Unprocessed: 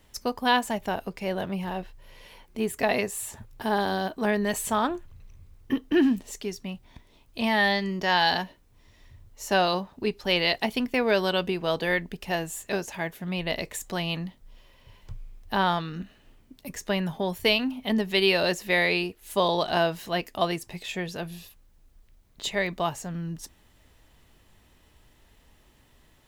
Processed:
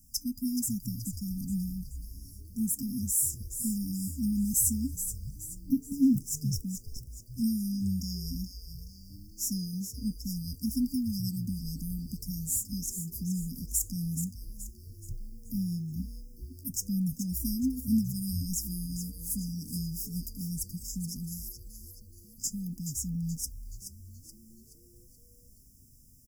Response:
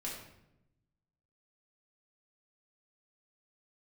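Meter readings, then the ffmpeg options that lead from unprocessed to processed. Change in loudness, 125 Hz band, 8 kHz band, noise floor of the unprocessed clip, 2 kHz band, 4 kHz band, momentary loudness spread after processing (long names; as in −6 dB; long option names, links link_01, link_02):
−5.5 dB, +1.5 dB, +7.5 dB, −60 dBFS, below −40 dB, −15.0 dB, 17 LU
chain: -filter_complex "[0:a]highshelf=frequency=7300:gain=12,afftfilt=real='re*(1-between(b*sr/4096,280,4900))':imag='im*(1-between(b*sr/4096,280,4900))':win_size=4096:overlap=0.75,asplit=6[link_01][link_02][link_03][link_04][link_05][link_06];[link_02]adelay=426,afreqshift=-130,volume=-9dB[link_07];[link_03]adelay=852,afreqshift=-260,volume=-16.5dB[link_08];[link_04]adelay=1278,afreqshift=-390,volume=-24.1dB[link_09];[link_05]adelay=1704,afreqshift=-520,volume=-31.6dB[link_10];[link_06]adelay=2130,afreqshift=-650,volume=-39.1dB[link_11];[link_01][link_07][link_08][link_09][link_10][link_11]amix=inputs=6:normalize=0"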